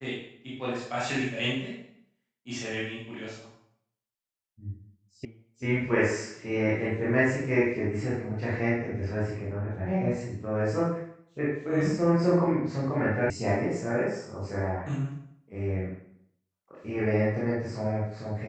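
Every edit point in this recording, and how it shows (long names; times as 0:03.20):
0:05.25: cut off before it has died away
0:13.30: cut off before it has died away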